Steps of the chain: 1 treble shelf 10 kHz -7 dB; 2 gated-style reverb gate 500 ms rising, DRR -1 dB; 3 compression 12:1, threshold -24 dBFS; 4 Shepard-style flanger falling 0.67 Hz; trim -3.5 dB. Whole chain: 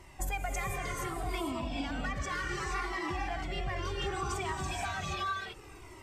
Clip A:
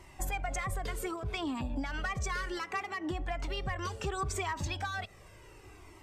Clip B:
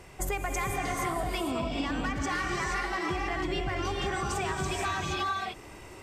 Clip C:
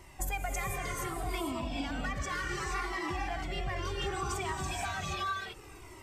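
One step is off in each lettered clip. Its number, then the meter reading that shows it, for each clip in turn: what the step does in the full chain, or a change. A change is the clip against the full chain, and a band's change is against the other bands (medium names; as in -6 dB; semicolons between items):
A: 2, momentary loudness spread change +13 LU; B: 4, 125 Hz band -1.5 dB; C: 1, 8 kHz band +2.0 dB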